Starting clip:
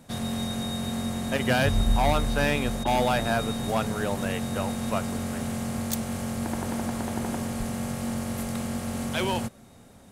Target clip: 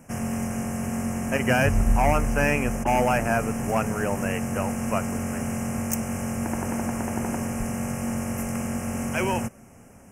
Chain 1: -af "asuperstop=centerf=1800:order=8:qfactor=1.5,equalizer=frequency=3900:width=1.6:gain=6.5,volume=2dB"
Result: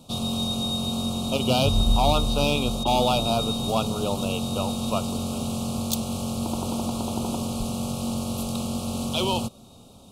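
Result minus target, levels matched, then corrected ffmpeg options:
4,000 Hz band +14.5 dB
-af "asuperstop=centerf=3900:order=8:qfactor=1.5,equalizer=frequency=3900:width=1.6:gain=6.5,volume=2dB"

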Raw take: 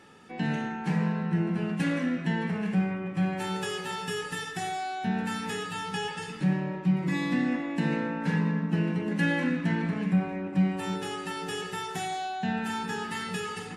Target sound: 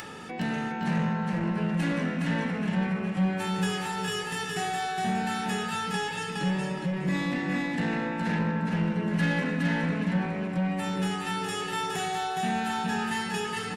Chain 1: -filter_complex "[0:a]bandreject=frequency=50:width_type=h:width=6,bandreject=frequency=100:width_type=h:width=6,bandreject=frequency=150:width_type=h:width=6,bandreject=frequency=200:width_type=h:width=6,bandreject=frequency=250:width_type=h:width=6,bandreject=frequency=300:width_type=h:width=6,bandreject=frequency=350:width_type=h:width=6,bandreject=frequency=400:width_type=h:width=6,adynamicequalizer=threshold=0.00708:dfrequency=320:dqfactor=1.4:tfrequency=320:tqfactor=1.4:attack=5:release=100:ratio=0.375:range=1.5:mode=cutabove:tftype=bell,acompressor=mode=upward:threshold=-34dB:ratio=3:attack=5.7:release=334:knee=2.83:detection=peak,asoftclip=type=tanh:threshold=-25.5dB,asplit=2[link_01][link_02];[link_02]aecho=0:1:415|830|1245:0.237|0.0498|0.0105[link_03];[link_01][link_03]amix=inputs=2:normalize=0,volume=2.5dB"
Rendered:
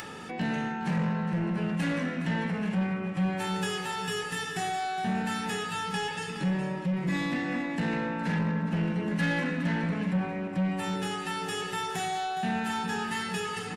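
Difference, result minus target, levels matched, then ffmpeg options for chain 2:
echo-to-direct −9 dB
-filter_complex "[0:a]bandreject=frequency=50:width_type=h:width=6,bandreject=frequency=100:width_type=h:width=6,bandreject=frequency=150:width_type=h:width=6,bandreject=frequency=200:width_type=h:width=6,bandreject=frequency=250:width_type=h:width=6,bandreject=frequency=300:width_type=h:width=6,bandreject=frequency=350:width_type=h:width=6,bandreject=frequency=400:width_type=h:width=6,adynamicequalizer=threshold=0.00708:dfrequency=320:dqfactor=1.4:tfrequency=320:tqfactor=1.4:attack=5:release=100:ratio=0.375:range=1.5:mode=cutabove:tftype=bell,acompressor=mode=upward:threshold=-34dB:ratio=3:attack=5.7:release=334:knee=2.83:detection=peak,asoftclip=type=tanh:threshold=-25.5dB,asplit=2[link_01][link_02];[link_02]aecho=0:1:415|830|1245:0.668|0.14|0.0295[link_03];[link_01][link_03]amix=inputs=2:normalize=0,volume=2.5dB"

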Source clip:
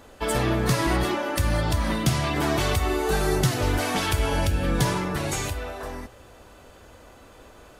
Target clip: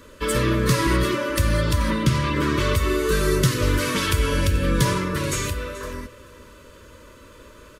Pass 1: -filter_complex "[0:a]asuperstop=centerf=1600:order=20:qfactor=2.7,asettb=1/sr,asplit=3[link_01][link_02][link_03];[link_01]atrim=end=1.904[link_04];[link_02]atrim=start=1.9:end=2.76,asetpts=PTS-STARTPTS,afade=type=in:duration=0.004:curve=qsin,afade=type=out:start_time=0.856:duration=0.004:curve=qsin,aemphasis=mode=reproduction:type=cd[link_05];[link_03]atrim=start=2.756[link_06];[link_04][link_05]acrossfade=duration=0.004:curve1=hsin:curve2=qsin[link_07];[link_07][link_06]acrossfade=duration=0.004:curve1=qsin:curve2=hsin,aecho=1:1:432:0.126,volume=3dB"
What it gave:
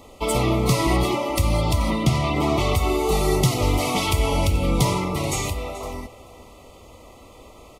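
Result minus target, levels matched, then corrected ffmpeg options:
2,000 Hz band −4.5 dB
-filter_complex "[0:a]asuperstop=centerf=760:order=20:qfactor=2.7,asettb=1/sr,asplit=3[link_01][link_02][link_03];[link_01]atrim=end=1.904[link_04];[link_02]atrim=start=1.9:end=2.76,asetpts=PTS-STARTPTS,afade=type=in:duration=0.004:curve=qsin,afade=type=out:start_time=0.856:duration=0.004:curve=qsin,aemphasis=mode=reproduction:type=cd[link_05];[link_03]atrim=start=2.756[link_06];[link_04][link_05]acrossfade=duration=0.004:curve1=hsin:curve2=qsin[link_07];[link_07][link_06]acrossfade=duration=0.004:curve1=qsin:curve2=hsin,aecho=1:1:432:0.126,volume=3dB"

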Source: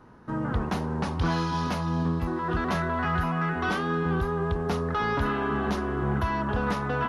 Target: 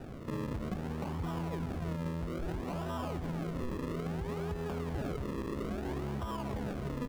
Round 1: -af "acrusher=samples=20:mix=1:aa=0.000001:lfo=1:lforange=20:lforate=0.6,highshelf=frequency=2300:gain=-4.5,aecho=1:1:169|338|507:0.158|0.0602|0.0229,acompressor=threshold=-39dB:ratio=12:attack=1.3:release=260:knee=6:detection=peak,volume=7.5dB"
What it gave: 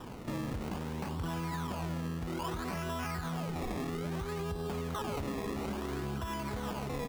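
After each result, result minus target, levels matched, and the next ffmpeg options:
4,000 Hz band +5.5 dB; sample-and-hold swept by an LFO: distortion −4 dB
-af "acrusher=samples=20:mix=1:aa=0.000001:lfo=1:lforange=20:lforate=0.6,highshelf=frequency=2300:gain=-11.5,aecho=1:1:169|338|507:0.158|0.0602|0.0229,acompressor=threshold=-39dB:ratio=12:attack=1.3:release=260:knee=6:detection=peak,volume=7.5dB"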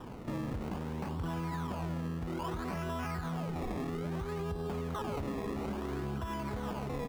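sample-and-hold swept by an LFO: distortion −4 dB
-af "acrusher=samples=40:mix=1:aa=0.000001:lfo=1:lforange=40:lforate=0.6,highshelf=frequency=2300:gain=-11.5,aecho=1:1:169|338|507:0.158|0.0602|0.0229,acompressor=threshold=-39dB:ratio=12:attack=1.3:release=260:knee=6:detection=peak,volume=7.5dB"

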